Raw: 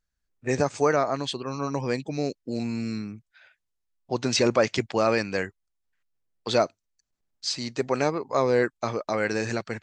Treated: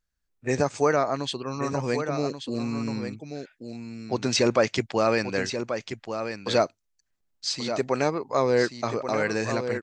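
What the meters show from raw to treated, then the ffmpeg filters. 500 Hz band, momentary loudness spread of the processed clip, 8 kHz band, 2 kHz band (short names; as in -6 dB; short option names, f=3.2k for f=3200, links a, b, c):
+0.5 dB, 11 LU, +0.5 dB, +0.5 dB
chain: -af "aecho=1:1:1133:0.376"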